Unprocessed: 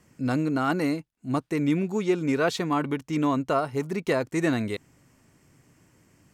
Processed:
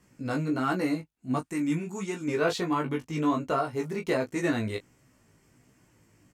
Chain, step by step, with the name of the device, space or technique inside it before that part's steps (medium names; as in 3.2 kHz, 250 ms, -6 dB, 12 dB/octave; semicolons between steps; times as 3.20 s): double-tracked vocal (doubling 20 ms -7 dB; chorus 1.4 Hz, delay 15.5 ms, depth 2.5 ms); 1.39–2.28 s: graphic EQ 500/4000/8000 Hz -9/-6/+9 dB